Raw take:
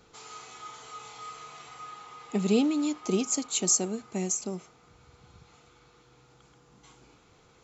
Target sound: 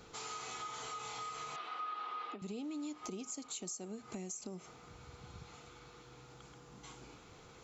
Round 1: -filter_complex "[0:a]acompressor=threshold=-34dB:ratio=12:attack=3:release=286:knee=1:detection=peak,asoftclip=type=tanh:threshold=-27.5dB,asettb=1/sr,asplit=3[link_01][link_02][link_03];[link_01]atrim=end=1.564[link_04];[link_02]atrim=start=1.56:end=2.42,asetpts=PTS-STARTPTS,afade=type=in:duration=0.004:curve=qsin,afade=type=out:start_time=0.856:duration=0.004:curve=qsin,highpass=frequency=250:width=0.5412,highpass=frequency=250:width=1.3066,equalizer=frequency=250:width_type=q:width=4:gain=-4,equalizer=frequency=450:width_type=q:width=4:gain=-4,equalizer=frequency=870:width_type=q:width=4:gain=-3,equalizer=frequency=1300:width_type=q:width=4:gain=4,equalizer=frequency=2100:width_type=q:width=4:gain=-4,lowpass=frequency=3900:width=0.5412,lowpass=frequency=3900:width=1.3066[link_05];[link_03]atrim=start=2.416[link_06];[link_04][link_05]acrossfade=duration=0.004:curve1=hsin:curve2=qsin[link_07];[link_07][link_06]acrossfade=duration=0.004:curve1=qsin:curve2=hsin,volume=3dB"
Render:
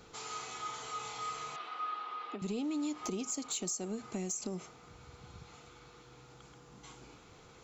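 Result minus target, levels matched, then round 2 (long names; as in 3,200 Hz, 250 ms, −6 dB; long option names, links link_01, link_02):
downward compressor: peak gain reduction −7 dB
-filter_complex "[0:a]acompressor=threshold=-41.5dB:ratio=12:attack=3:release=286:knee=1:detection=peak,asoftclip=type=tanh:threshold=-27.5dB,asettb=1/sr,asplit=3[link_01][link_02][link_03];[link_01]atrim=end=1.564[link_04];[link_02]atrim=start=1.56:end=2.42,asetpts=PTS-STARTPTS,afade=type=in:duration=0.004:curve=qsin,afade=type=out:start_time=0.856:duration=0.004:curve=qsin,highpass=frequency=250:width=0.5412,highpass=frequency=250:width=1.3066,equalizer=frequency=250:width_type=q:width=4:gain=-4,equalizer=frequency=450:width_type=q:width=4:gain=-4,equalizer=frequency=870:width_type=q:width=4:gain=-3,equalizer=frequency=1300:width_type=q:width=4:gain=4,equalizer=frequency=2100:width_type=q:width=4:gain=-4,lowpass=frequency=3900:width=0.5412,lowpass=frequency=3900:width=1.3066[link_05];[link_03]atrim=start=2.416[link_06];[link_04][link_05]acrossfade=duration=0.004:curve1=hsin:curve2=qsin[link_07];[link_07][link_06]acrossfade=duration=0.004:curve1=qsin:curve2=hsin,volume=3dB"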